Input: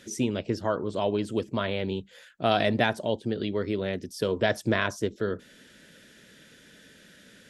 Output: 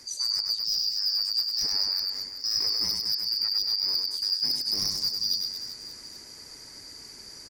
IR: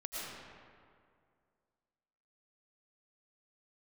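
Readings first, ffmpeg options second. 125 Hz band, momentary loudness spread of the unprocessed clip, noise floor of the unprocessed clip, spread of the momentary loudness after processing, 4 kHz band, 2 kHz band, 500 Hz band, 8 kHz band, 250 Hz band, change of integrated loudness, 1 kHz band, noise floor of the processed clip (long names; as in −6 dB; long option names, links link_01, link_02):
−19.0 dB, 8 LU, −55 dBFS, 18 LU, +14.5 dB, −17.5 dB, −26.5 dB, +9.0 dB, −21.5 dB, +3.5 dB, −19.0 dB, −46 dBFS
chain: -af "afftfilt=real='real(if(lt(b,272),68*(eq(floor(b/68),0)*1+eq(floor(b/68),1)*2+eq(floor(b/68),2)*3+eq(floor(b/68),3)*0)+mod(b,68),b),0)':imag='imag(if(lt(b,272),68*(eq(floor(b/68),0)*1+eq(floor(b/68),1)*2+eq(floor(b/68),2)*3+eq(floor(b/68),3)*0)+mod(b,68),b),0)':win_size=2048:overlap=0.75,highshelf=frequency=4200:width_type=q:width=3:gain=6.5,areverse,acompressor=threshold=-25dB:ratio=10,areverse,aeval=exprs='0.1*(abs(mod(val(0)/0.1+3,4)-2)-1)':channel_layout=same,aecho=1:1:100|225|381.2|576.6|820.7:0.631|0.398|0.251|0.158|0.1"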